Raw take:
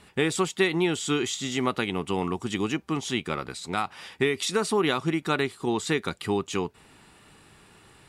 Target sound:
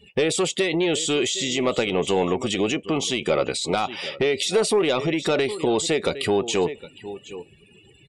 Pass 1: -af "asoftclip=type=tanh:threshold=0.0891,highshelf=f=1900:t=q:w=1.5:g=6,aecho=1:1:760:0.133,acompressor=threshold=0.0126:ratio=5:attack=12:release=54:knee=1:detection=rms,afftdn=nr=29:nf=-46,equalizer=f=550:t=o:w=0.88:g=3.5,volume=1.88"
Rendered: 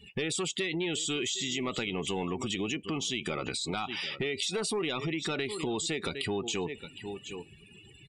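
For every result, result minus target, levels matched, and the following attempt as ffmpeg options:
compression: peak gain reduction +6.5 dB; 500 Hz band -3.5 dB
-af "asoftclip=type=tanh:threshold=0.0891,highshelf=f=1900:t=q:w=1.5:g=6,aecho=1:1:760:0.133,acompressor=threshold=0.0316:ratio=5:attack=12:release=54:knee=1:detection=rms,afftdn=nr=29:nf=-46,equalizer=f=550:t=o:w=0.88:g=3.5,volume=1.88"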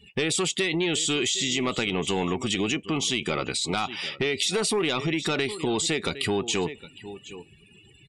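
500 Hz band -4.0 dB
-af "asoftclip=type=tanh:threshold=0.0891,highshelf=f=1900:t=q:w=1.5:g=6,aecho=1:1:760:0.133,acompressor=threshold=0.0316:ratio=5:attack=12:release=54:knee=1:detection=rms,afftdn=nr=29:nf=-46,equalizer=f=550:t=o:w=0.88:g=15.5,volume=1.88"

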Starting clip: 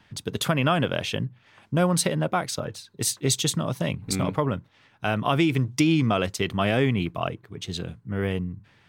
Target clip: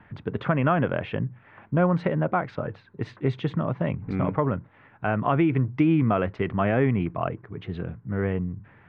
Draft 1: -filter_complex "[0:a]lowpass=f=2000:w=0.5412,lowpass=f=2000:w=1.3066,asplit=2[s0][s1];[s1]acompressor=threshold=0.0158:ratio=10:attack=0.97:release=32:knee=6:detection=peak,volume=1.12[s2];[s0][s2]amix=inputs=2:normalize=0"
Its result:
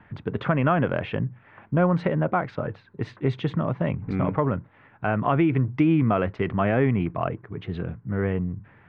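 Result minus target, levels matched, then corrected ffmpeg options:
compression: peak gain reduction -8 dB
-filter_complex "[0:a]lowpass=f=2000:w=0.5412,lowpass=f=2000:w=1.3066,asplit=2[s0][s1];[s1]acompressor=threshold=0.00562:ratio=10:attack=0.97:release=32:knee=6:detection=peak,volume=1.12[s2];[s0][s2]amix=inputs=2:normalize=0"

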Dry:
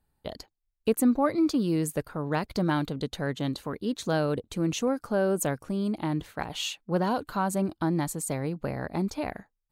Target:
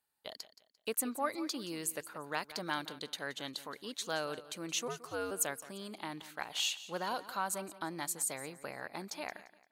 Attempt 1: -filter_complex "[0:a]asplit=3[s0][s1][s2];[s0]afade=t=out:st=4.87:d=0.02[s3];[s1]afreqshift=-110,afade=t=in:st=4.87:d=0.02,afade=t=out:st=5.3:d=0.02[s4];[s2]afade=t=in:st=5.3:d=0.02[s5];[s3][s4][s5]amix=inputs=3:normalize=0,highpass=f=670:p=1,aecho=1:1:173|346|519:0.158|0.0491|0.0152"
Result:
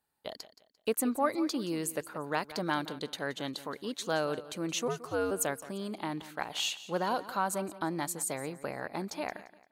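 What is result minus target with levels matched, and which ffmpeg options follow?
500 Hz band +3.0 dB
-filter_complex "[0:a]asplit=3[s0][s1][s2];[s0]afade=t=out:st=4.87:d=0.02[s3];[s1]afreqshift=-110,afade=t=in:st=4.87:d=0.02,afade=t=out:st=5.3:d=0.02[s4];[s2]afade=t=in:st=5.3:d=0.02[s5];[s3][s4][s5]amix=inputs=3:normalize=0,highpass=f=1900:p=1,aecho=1:1:173|346|519:0.158|0.0491|0.0152"

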